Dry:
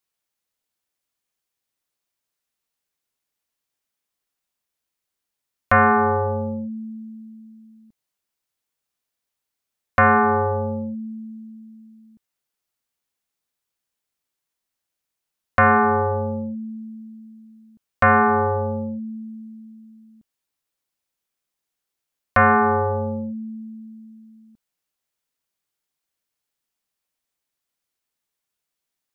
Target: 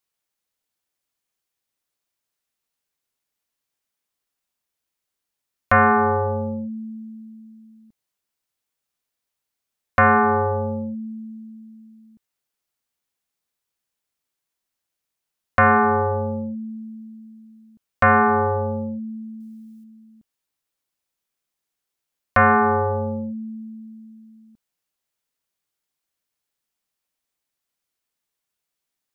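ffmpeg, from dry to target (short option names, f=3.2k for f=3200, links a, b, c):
-filter_complex "[0:a]asettb=1/sr,asplit=3[a][b][c];[a]atrim=end=19.404[d];[b]atrim=start=19.4:end=19.84,asetpts=PTS-STARTPTS,afade=t=in:d=0.004:c=qsin,afade=t=out:st=0.436:d=0.004:c=qsin,highshelf=f=2.6k:g=11.5[e];[c]atrim=start=19.836[f];[d][e]acrossfade=d=0.004:c1=hsin:c2=qsin[g];[g][f]acrossfade=d=0.004:c1=qsin:c2=hsin"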